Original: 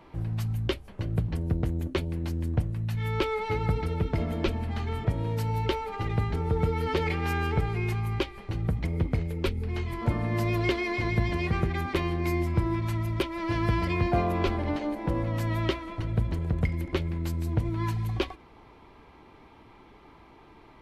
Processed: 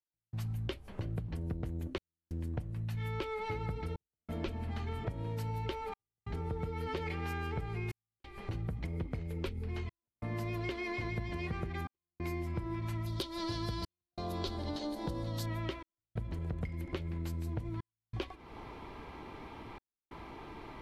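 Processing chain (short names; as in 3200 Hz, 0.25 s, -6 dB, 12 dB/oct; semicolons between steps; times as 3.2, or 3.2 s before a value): 13.06–15.46 resonant high shelf 3100 Hz +8.5 dB, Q 3; compressor 5:1, threshold -42 dBFS, peak gain reduction 20 dB; step gate "..xxxxxxxxxx" 91 bpm -60 dB; gain +5.5 dB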